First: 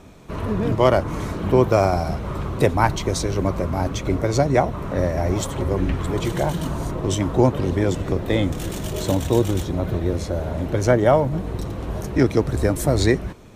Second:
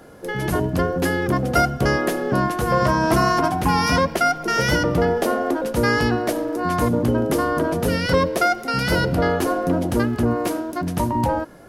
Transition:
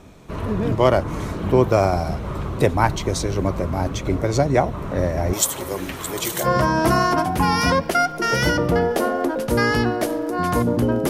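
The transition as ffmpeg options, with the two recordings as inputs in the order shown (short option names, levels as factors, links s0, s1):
-filter_complex "[0:a]asettb=1/sr,asplit=3[s0][s1][s2];[s0]atrim=end=5.334[s3];[s1]atrim=start=5.33:end=6.48,asetpts=PTS-STARTPTS,afade=t=in:d=0.004:c=qsin,afade=t=out:st=1.146:d=0.004:c=qsin,aemphasis=mode=production:type=riaa[s4];[s2]atrim=start=6.476[s5];[s3][s4]acrossfade=d=0.004:c1=hsin:c2=qsin[s6];[s6][s5]acrossfade=d=0.004:c1=qsin:c2=hsin,apad=whole_dur=11.09,atrim=end=11.09,atrim=end=6.48,asetpts=PTS-STARTPTS[s7];[1:a]atrim=start=2.66:end=7.35,asetpts=PTS-STARTPTS[s8];[s7][s8]acrossfade=d=0.08:c1=tri:c2=tri"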